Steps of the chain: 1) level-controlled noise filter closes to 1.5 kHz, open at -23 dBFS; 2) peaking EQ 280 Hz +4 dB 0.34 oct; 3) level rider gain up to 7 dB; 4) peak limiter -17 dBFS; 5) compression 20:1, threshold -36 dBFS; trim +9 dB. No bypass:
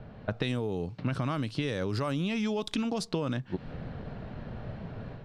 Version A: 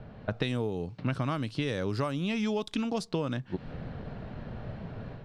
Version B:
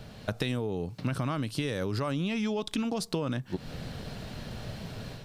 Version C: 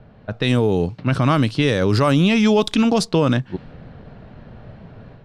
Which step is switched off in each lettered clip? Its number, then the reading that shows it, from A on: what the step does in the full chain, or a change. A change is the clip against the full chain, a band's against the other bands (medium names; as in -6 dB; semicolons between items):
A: 4, mean gain reduction 2.0 dB; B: 1, 8 kHz band +3.5 dB; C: 5, mean gain reduction 8.0 dB